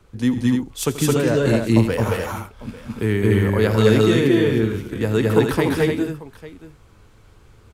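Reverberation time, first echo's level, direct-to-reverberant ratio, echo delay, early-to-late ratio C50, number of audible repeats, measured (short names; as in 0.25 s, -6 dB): none, -15.0 dB, none, 84 ms, none, 5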